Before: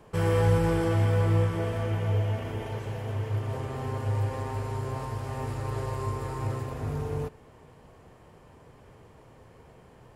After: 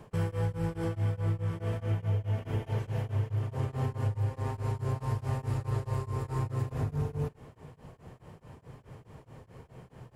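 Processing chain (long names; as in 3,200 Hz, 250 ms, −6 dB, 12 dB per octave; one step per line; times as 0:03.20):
downward compressor 6 to 1, threshold −32 dBFS, peak gain reduction 13.5 dB
parametric band 130 Hz +7.5 dB 1.1 octaves
tremolo along a rectified sine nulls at 4.7 Hz
level +2 dB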